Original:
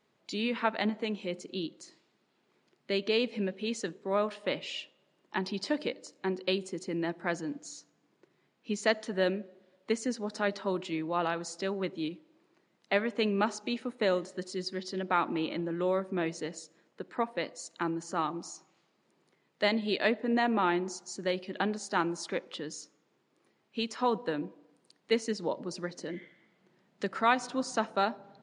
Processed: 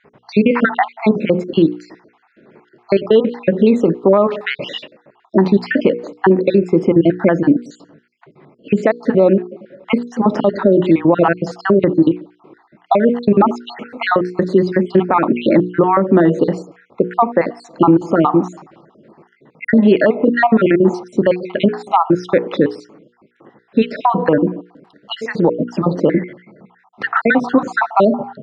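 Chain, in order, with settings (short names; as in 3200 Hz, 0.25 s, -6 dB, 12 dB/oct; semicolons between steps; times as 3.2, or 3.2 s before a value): random spectral dropouts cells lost 55%; notches 60/120/180/240/300/360/420/480 Hz; compressor 6:1, threshold -34 dBFS, peak gain reduction 13 dB; Bessel low-pass 1100 Hz, order 2; maximiser +30 dB; gain -1 dB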